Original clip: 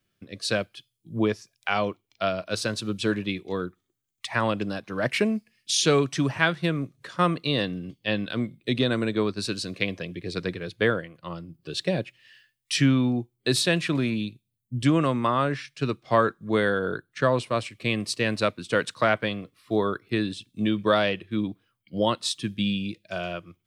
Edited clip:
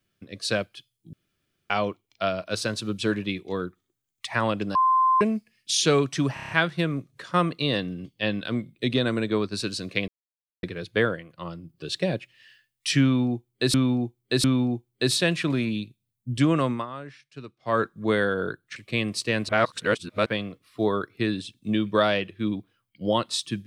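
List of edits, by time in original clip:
0:01.13–0:01.70: fill with room tone
0:04.75–0:05.21: beep over 1,040 Hz −16.5 dBFS
0:06.34: stutter 0.03 s, 6 plays
0:09.93–0:10.48: silence
0:12.89–0:13.59: repeat, 3 plays
0:15.16–0:16.25: duck −13.5 dB, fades 0.15 s
0:17.21–0:17.68: remove
0:18.41–0:19.18: reverse

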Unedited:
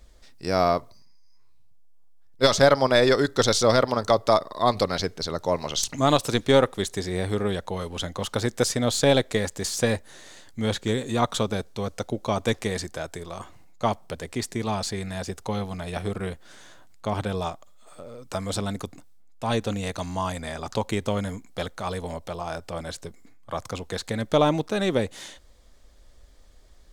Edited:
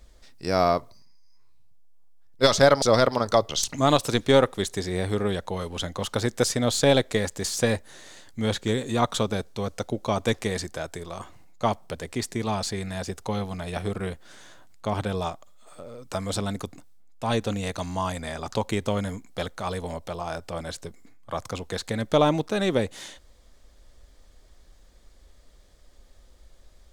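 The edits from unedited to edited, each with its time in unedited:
0:02.82–0:03.58: remove
0:04.25–0:05.69: remove

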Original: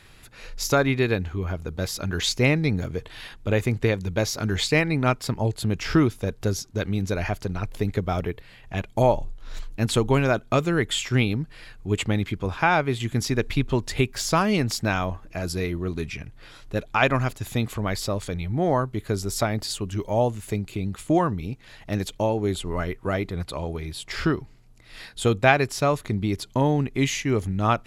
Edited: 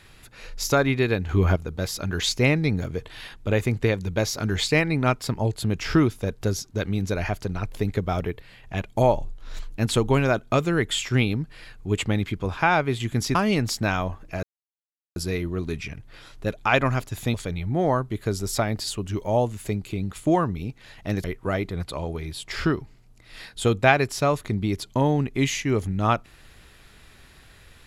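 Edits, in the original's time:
0:01.29–0:01.56: clip gain +8.5 dB
0:13.35–0:14.37: remove
0:15.45: splice in silence 0.73 s
0:17.63–0:18.17: remove
0:22.07–0:22.84: remove

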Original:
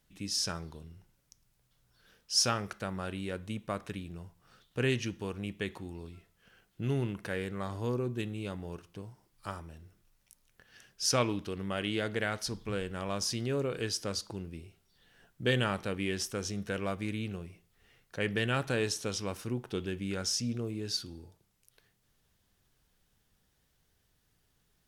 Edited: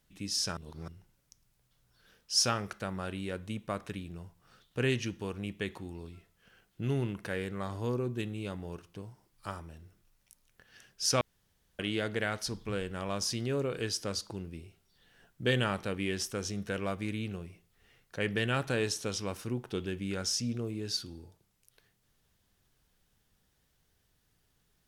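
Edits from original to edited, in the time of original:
0:00.57–0:00.88: reverse
0:11.21–0:11.79: fill with room tone

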